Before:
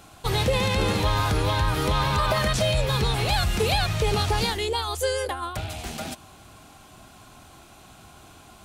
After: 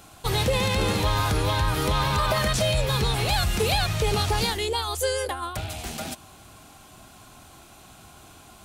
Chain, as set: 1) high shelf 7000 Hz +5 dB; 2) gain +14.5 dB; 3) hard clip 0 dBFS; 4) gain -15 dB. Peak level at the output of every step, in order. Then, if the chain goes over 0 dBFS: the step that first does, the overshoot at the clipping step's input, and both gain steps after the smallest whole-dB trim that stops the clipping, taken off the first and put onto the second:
-11.0, +3.5, 0.0, -15.0 dBFS; step 2, 3.5 dB; step 2 +10.5 dB, step 4 -11 dB

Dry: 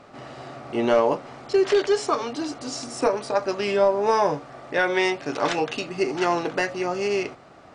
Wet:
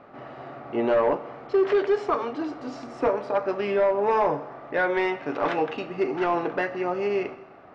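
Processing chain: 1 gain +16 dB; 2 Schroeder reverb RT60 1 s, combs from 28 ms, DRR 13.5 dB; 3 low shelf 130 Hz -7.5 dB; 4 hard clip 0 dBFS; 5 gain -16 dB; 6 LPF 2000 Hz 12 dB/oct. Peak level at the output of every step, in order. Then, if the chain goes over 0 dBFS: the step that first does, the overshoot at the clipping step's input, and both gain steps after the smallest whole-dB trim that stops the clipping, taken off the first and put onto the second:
+8.5, +9.0, +9.0, 0.0, -16.0, -15.5 dBFS; step 1, 9.0 dB; step 1 +7 dB, step 5 -7 dB

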